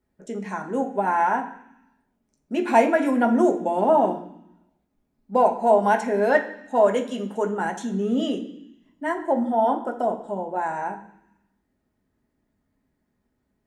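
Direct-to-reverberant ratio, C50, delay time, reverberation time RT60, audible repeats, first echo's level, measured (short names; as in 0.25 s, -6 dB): 1.0 dB, 10.5 dB, none, 0.75 s, none, none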